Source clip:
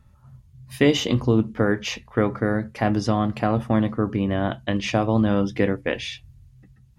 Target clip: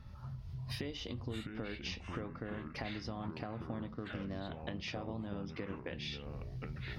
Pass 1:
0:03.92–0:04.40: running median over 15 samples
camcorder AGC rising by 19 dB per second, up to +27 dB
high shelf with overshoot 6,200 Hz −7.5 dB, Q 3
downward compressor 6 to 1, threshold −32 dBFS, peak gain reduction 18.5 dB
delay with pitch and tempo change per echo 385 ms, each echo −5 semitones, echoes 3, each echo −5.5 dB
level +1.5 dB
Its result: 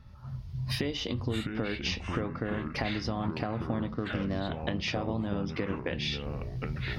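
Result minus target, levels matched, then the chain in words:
downward compressor: peak gain reduction −9.5 dB
0:03.92–0:04.40: running median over 15 samples
camcorder AGC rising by 19 dB per second, up to +27 dB
high shelf with overshoot 6,200 Hz −7.5 dB, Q 3
downward compressor 6 to 1, threshold −43.5 dBFS, peak gain reduction 28 dB
delay with pitch and tempo change per echo 385 ms, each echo −5 semitones, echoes 3, each echo −5.5 dB
level +1.5 dB

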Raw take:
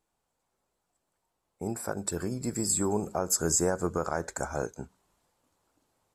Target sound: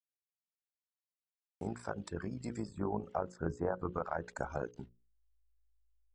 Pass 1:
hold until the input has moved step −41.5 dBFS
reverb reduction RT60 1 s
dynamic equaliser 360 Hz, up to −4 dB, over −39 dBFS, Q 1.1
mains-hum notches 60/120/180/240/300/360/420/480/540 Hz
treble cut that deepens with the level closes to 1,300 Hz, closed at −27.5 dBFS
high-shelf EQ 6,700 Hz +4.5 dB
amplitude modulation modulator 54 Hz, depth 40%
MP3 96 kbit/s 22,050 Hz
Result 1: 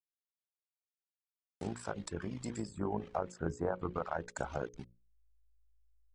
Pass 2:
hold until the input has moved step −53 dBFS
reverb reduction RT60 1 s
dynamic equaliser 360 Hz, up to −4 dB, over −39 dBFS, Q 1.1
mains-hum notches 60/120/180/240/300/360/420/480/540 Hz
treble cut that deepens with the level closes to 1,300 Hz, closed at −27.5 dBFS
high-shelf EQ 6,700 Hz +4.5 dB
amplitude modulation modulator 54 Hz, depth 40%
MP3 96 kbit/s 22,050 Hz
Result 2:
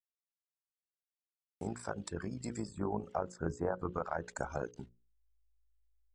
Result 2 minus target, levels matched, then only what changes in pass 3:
8,000 Hz band +6.5 dB
change: high-shelf EQ 6,700 Hz −7.5 dB

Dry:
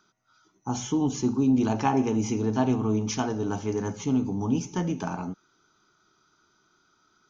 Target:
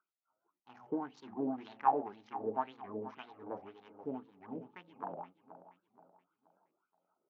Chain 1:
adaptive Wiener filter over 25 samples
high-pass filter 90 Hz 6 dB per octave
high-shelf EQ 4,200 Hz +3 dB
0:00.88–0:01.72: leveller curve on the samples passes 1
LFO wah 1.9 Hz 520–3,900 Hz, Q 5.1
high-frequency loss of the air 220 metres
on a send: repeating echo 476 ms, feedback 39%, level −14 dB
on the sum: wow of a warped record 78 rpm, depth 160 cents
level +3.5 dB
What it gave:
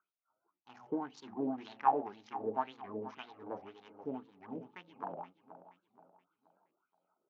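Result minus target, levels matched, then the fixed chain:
4,000 Hz band +3.5 dB
adaptive Wiener filter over 25 samples
high-pass filter 90 Hz 6 dB per octave
high-shelf EQ 4,200 Hz −8.5 dB
0:00.88–0:01.72: leveller curve on the samples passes 1
LFO wah 1.9 Hz 520–3,900 Hz, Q 5.1
high-frequency loss of the air 220 metres
on a send: repeating echo 476 ms, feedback 39%, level −14 dB
on the sum: wow of a warped record 78 rpm, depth 160 cents
level +3.5 dB

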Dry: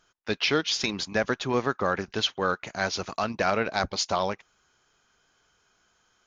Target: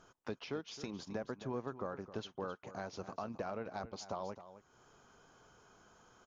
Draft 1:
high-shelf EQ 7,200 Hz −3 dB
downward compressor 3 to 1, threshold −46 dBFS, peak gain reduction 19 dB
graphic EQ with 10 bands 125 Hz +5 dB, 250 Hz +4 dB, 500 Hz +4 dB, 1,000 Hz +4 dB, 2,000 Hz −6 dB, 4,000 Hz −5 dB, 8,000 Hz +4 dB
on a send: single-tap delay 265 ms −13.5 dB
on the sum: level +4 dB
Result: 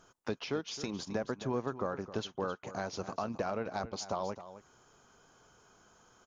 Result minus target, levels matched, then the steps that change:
downward compressor: peak gain reduction −6 dB; 8,000 Hz band +3.0 dB
change: high-shelf EQ 7,200 Hz −12.5 dB
change: downward compressor 3 to 1, threshold −55 dBFS, peak gain reduction 25 dB

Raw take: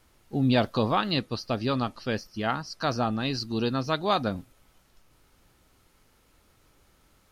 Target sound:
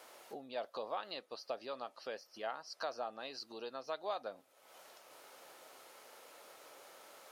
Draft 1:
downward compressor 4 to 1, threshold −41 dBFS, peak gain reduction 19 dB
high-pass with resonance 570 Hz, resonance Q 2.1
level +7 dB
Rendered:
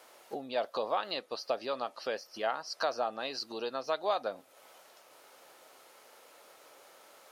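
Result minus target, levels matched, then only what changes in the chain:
downward compressor: peak gain reduction −8.5 dB
change: downward compressor 4 to 1, threshold −52.5 dBFS, peak gain reduction 28 dB

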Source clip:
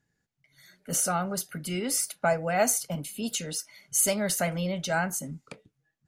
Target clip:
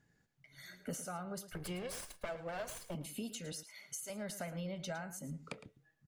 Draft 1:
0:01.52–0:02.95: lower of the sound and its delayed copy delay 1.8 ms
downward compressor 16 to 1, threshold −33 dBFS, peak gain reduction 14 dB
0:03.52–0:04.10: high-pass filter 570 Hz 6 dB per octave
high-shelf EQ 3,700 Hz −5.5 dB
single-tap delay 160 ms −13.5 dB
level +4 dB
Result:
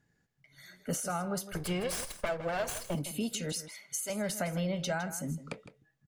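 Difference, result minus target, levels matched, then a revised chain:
echo 50 ms late; downward compressor: peak gain reduction −9 dB
0:01.52–0:02.95: lower of the sound and its delayed copy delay 1.8 ms
downward compressor 16 to 1, threshold −42.5 dBFS, peak gain reduction 23 dB
0:03.52–0:04.10: high-pass filter 570 Hz 6 dB per octave
high-shelf EQ 3,700 Hz −5.5 dB
single-tap delay 110 ms −13.5 dB
level +4 dB

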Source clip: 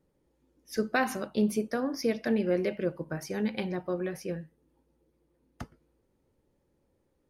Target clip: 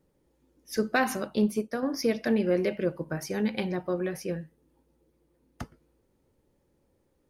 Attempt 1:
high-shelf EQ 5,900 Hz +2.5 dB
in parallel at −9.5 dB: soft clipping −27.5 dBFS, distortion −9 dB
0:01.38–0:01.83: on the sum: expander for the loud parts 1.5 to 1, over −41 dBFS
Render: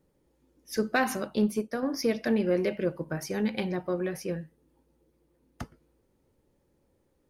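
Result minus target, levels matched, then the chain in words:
soft clipping: distortion +8 dB
high-shelf EQ 5,900 Hz +2.5 dB
in parallel at −9.5 dB: soft clipping −20.5 dBFS, distortion −17 dB
0:01.38–0:01.83: on the sum: expander for the loud parts 1.5 to 1, over −41 dBFS

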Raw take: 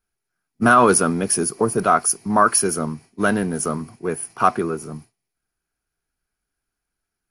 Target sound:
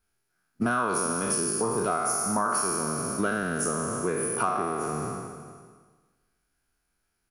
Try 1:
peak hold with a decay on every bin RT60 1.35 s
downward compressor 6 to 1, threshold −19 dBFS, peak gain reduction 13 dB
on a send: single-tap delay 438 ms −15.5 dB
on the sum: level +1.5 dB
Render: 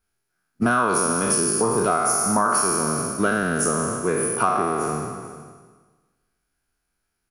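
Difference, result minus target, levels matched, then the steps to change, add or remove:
downward compressor: peak gain reduction −6 dB
change: downward compressor 6 to 1, threshold −26.5 dBFS, peak gain reduction 19 dB

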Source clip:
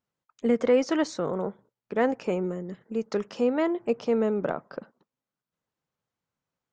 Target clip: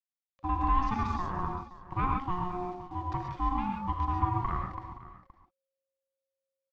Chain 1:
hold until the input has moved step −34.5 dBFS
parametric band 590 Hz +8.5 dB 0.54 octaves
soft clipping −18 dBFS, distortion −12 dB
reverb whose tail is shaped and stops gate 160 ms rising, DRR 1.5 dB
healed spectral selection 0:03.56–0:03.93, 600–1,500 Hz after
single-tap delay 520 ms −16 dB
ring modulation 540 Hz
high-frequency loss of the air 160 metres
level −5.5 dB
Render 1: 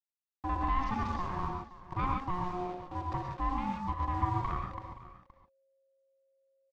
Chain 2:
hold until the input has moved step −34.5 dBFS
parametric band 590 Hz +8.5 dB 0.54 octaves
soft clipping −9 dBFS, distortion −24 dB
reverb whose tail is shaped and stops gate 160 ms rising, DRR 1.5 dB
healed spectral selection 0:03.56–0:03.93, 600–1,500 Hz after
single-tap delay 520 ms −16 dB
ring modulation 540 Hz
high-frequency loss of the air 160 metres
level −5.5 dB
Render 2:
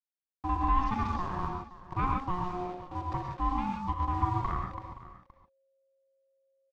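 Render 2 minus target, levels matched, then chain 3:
hold until the input has moved: distortion +8 dB
hold until the input has moved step −42.5 dBFS
parametric band 590 Hz +8.5 dB 0.54 octaves
soft clipping −9 dBFS, distortion −24 dB
reverb whose tail is shaped and stops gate 160 ms rising, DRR 1.5 dB
healed spectral selection 0:03.56–0:03.93, 600–1,500 Hz after
single-tap delay 520 ms −16 dB
ring modulation 540 Hz
high-frequency loss of the air 160 metres
level −5.5 dB

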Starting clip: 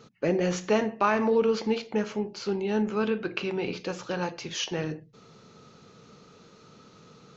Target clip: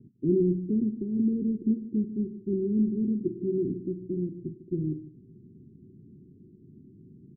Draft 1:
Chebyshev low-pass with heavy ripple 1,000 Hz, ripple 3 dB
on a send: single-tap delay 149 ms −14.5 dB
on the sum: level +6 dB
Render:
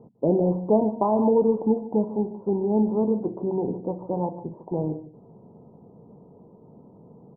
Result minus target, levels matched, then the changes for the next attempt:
500 Hz band +4.0 dB
change: Chebyshev low-pass with heavy ripple 380 Hz, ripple 3 dB

